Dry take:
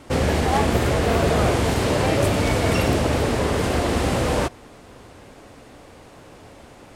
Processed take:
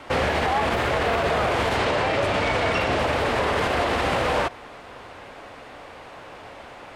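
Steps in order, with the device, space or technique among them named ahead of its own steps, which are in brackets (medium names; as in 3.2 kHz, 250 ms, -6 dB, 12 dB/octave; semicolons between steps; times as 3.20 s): 1.76–2.99 s: low-pass 8.6 kHz 12 dB/octave; DJ mixer with the lows and highs turned down (three-band isolator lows -12 dB, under 550 Hz, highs -14 dB, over 3.9 kHz; peak limiter -22 dBFS, peak gain reduction 10.5 dB); trim +8 dB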